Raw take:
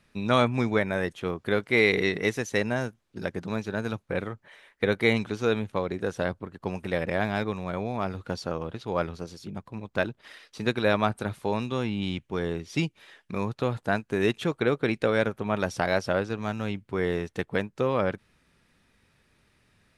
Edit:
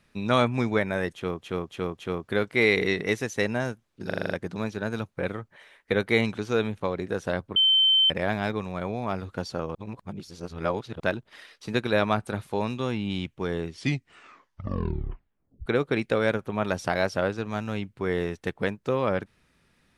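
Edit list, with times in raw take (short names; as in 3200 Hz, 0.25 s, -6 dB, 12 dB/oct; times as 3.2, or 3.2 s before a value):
1.14–1.42 loop, 4 plays
3.22 stutter 0.04 s, 7 plays
6.48–7.02 bleep 3090 Hz -16.5 dBFS
8.67–9.92 reverse
12.6 tape stop 1.98 s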